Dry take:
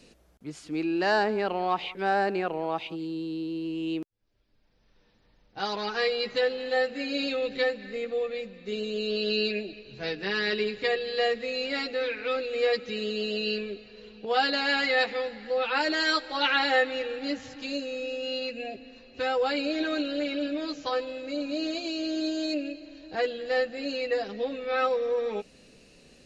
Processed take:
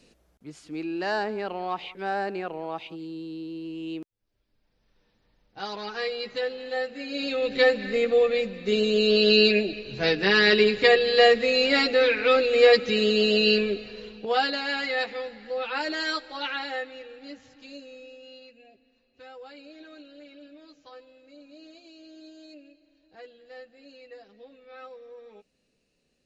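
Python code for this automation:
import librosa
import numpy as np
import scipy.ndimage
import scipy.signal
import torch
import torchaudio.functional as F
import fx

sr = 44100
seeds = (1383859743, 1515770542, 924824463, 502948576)

y = fx.gain(x, sr, db=fx.line((7.06, -3.5), (7.77, 9.0), (13.89, 9.0), (14.62, -3.0), (16.06, -3.0), (16.99, -11.0), (17.92, -11.0), (18.59, -18.5)))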